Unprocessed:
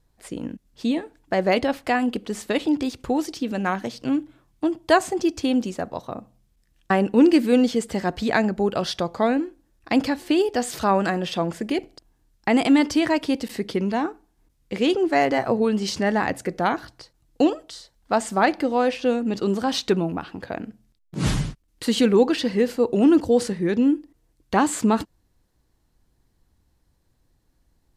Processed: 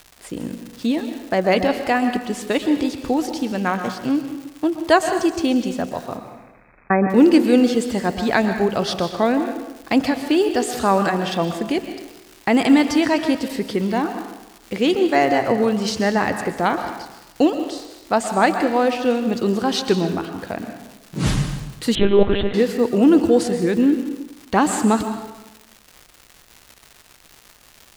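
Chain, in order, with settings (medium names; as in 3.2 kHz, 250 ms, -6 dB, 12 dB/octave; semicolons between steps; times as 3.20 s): crackle 300 per s -34 dBFS; 6.17–7.10 s: brick-wall FIR low-pass 2.6 kHz; plate-style reverb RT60 1 s, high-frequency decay 0.85×, pre-delay 110 ms, DRR 7.5 dB; 21.95–22.54 s: monotone LPC vocoder at 8 kHz 200 Hz; trim +2.5 dB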